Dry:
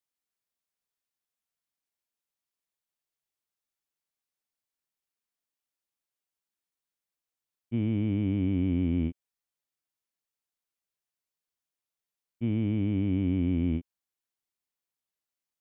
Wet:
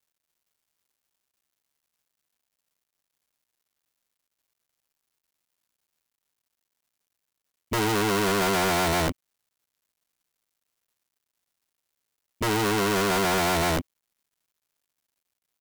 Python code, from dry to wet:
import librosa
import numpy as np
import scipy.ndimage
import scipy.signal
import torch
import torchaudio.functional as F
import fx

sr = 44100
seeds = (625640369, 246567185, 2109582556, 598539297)

y = fx.law_mismatch(x, sr, coded='mu')
y = (np.mod(10.0 ** (27.0 / 20.0) * y + 1.0, 2.0) - 1.0) / 10.0 ** (27.0 / 20.0)
y = y * librosa.db_to_amplitude(7.0)